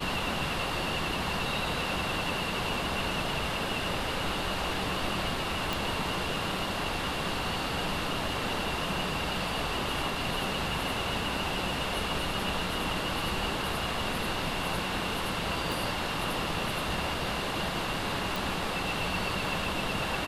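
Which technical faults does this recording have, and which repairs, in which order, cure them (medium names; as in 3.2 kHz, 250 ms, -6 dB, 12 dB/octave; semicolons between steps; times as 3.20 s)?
5.73 s: pop
15.72 s: pop
18.36 s: pop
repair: de-click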